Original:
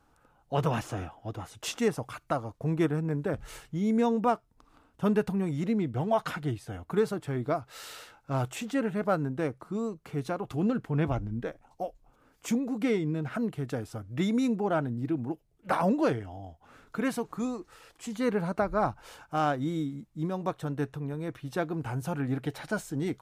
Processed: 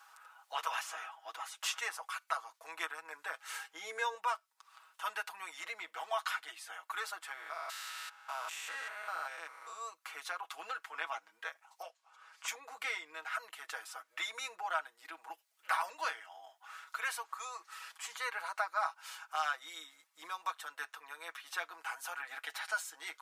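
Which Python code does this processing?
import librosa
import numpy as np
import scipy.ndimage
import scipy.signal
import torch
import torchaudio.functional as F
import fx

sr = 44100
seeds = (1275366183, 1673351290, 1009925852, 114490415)

y = fx.small_body(x, sr, hz=(310.0, 440.0, 800.0, 1600.0), ring_ms=45, db=10, at=(3.49, 4.15))
y = fx.spec_steps(y, sr, hold_ms=200, at=(7.32, 9.8), fade=0.02)
y = fx.lowpass(y, sr, hz=7100.0, slope=12, at=(11.82, 12.48))
y = scipy.signal.sosfilt(scipy.signal.butter(4, 1000.0, 'highpass', fs=sr, output='sos'), y)
y = y + 0.78 * np.pad(y, (int(6.2 * sr / 1000.0), 0))[:len(y)]
y = fx.band_squash(y, sr, depth_pct=40)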